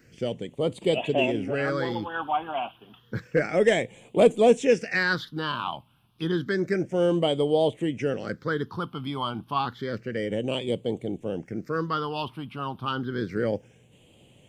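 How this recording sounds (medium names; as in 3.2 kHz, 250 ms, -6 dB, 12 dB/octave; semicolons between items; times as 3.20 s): phasing stages 6, 0.3 Hz, lowest notch 480–1500 Hz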